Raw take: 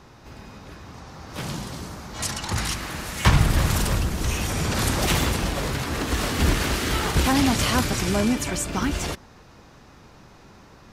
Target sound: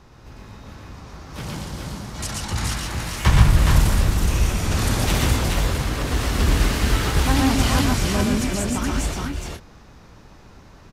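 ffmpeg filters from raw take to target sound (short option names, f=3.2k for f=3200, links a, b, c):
-filter_complex "[0:a]lowshelf=f=76:g=9.5,asplit=2[a][b];[b]aecho=0:1:119|138|419|444:0.631|0.501|0.631|0.299[c];[a][c]amix=inputs=2:normalize=0,volume=-3dB"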